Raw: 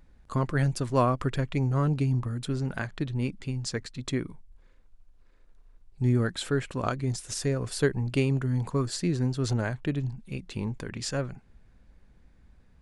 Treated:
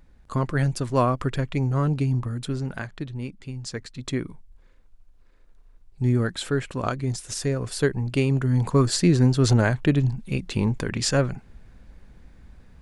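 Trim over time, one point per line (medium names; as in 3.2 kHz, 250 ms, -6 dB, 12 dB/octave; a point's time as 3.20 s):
2.43 s +2.5 dB
3.33 s -4 dB
4.19 s +2.5 dB
8.16 s +2.5 dB
8.85 s +9 dB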